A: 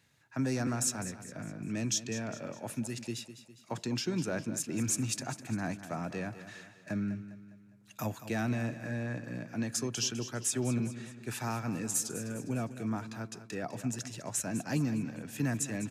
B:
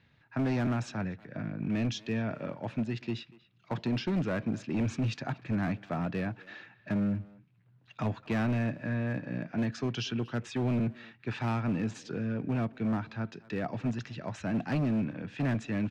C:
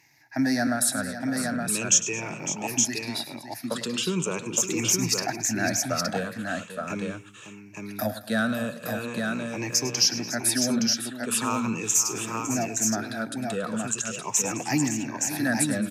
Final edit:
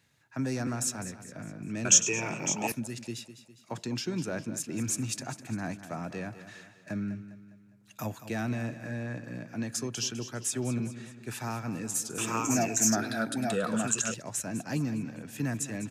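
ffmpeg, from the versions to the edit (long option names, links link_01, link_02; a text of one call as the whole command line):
ffmpeg -i take0.wav -i take1.wav -i take2.wav -filter_complex "[2:a]asplit=2[link_01][link_02];[0:a]asplit=3[link_03][link_04][link_05];[link_03]atrim=end=1.852[link_06];[link_01]atrim=start=1.848:end=2.722[link_07];[link_04]atrim=start=2.718:end=12.182[link_08];[link_02]atrim=start=12.178:end=14.142[link_09];[link_05]atrim=start=14.138[link_10];[link_06][link_07]acrossfade=duration=0.004:curve1=hsin:curve2=hsin[link_11];[link_11][link_08]acrossfade=duration=0.004:curve1=hsin:curve2=hsin[link_12];[link_12][link_09]acrossfade=duration=0.004:curve1=hsin:curve2=hsin[link_13];[link_13][link_10]acrossfade=duration=0.004:curve1=hsin:curve2=hsin" out.wav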